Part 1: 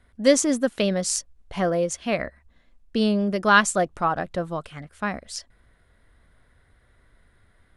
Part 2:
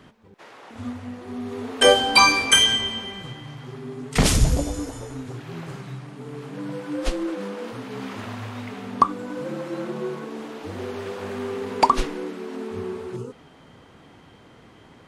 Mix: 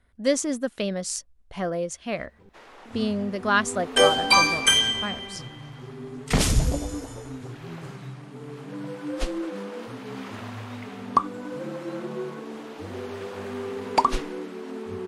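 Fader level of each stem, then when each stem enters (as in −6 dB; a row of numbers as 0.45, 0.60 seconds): −5.0, −3.0 decibels; 0.00, 2.15 seconds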